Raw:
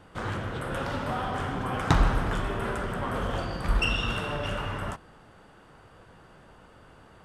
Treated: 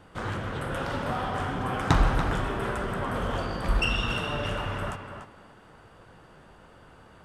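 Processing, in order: tape echo 0.288 s, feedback 21%, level -6.5 dB, low-pass 4300 Hz

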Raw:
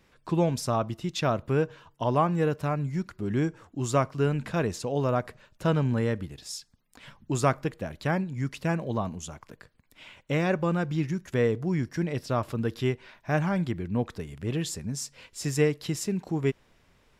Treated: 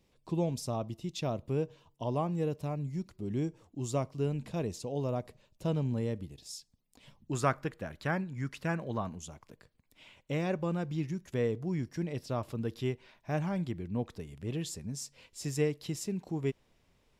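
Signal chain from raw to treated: bell 1500 Hz -14 dB 0.95 oct, from 7.33 s +4 dB, from 9.17 s -6 dB; gain -6 dB

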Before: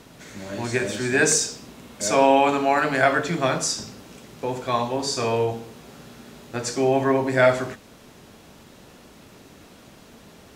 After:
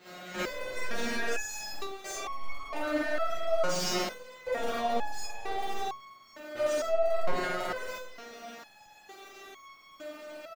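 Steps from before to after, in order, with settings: zero-crossing step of -27.5 dBFS; gate with hold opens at -26 dBFS; bell 10000 Hz -11 dB 0.34 oct; notch 950 Hz, Q 10; overdrive pedal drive 33 dB, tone 1900 Hz, clips at -4.5 dBFS; doubler 49 ms -12.5 dB; reverb RT60 0.40 s, pre-delay 15 ms, DRR -10 dB; maximiser -1 dB; crackling interface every 0.11 s, samples 2048, repeat, from 0.41; stepped resonator 2.2 Hz 180–1100 Hz; gain -8 dB

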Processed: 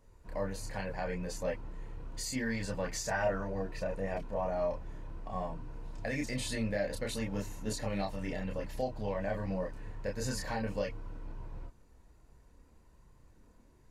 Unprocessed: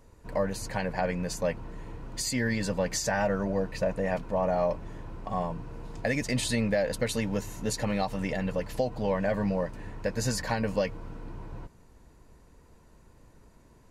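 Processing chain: chorus voices 6, 0.56 Hz, delay 29 ms, depth 2.1 ms; 2.42–3.5 dynamic EQ 1200 Hz, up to +4 dB, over -40 dBFS, Q 0.9; gain -4 dB

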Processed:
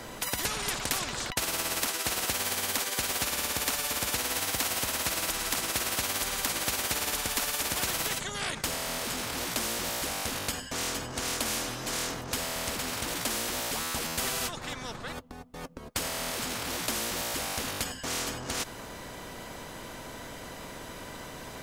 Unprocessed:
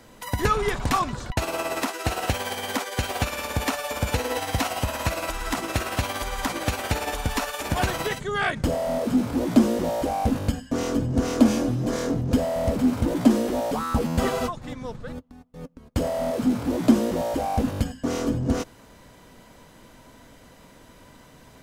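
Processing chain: spectral compressor 4:1; gain -5 dB

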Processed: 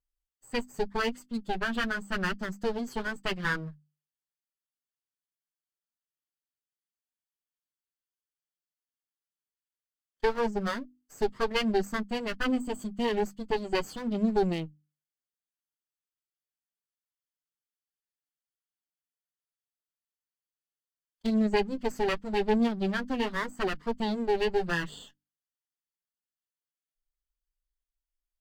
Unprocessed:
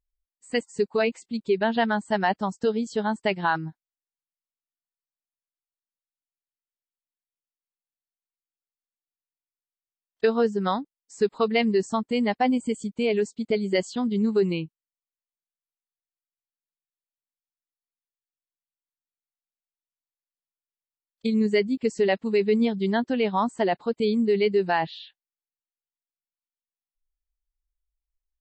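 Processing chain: minimum comb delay 0.64 ms; flange 0.84 Hz, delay 4 ms, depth 4.1 ms, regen -29%; notches 50/100/150/200/250/300 Hz

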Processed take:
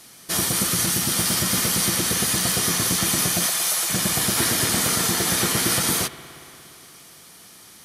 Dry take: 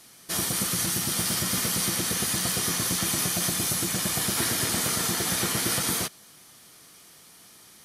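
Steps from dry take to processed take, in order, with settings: 3.46–3.9 HPF 530 Hz 24 dB/oct; spring tank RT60 3.2 s, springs 58 ms, chirp 55 ms, DRR 13 dB; gain +5 dB

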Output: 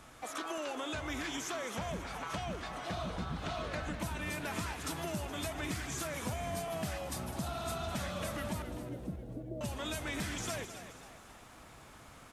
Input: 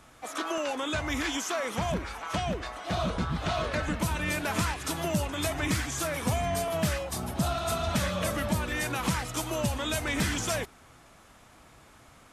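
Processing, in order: compressor 2.5:1, threshold -40 dBFS, peak gain reduction 11.5 dB; 8.62–9.61 steep low-pass 620 Hz 72 dB/oct; frequency-shifting echo 0.268 s, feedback 43%, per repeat +76 Hz, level -12 dB; lo-fi delay 0.205 s, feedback 35%, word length 11-bit, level -13 dB

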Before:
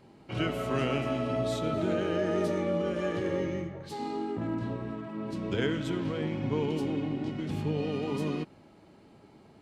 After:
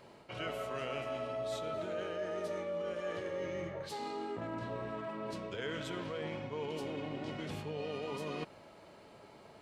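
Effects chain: resonant low shelf 410 Hz -8 dB, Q 1.5; notch 800 Hz, Q 12; reverse; compressor 5:1, threshold -41 dBFS, peak gain reduction 13.5 dB; reverse; gain +4 dB

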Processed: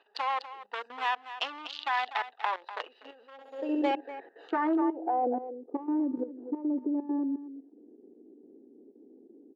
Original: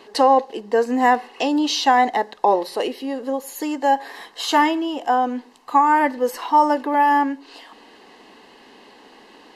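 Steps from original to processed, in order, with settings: Wiener smoothing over 41 samples; compressor 8:1, threshold -18 dBFS, peak gain reduction 7.5 dB; one-sided clip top -21.5 dBFS; on a send: echo 0.245 s -10.5 dB; on the sum: low-pass sweep 3300 Hz -> 270 Hz, 3.83–6.13; level quantiser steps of 13 dB; high shelf 5600 Hz +11.5 dB; 3.32–3.91 flutter echo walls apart 11.4 m, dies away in 0.94 s; high-pass sweep 1100 Hz -> 380 Hz, 3.3–3.8; gain -3.5 dB

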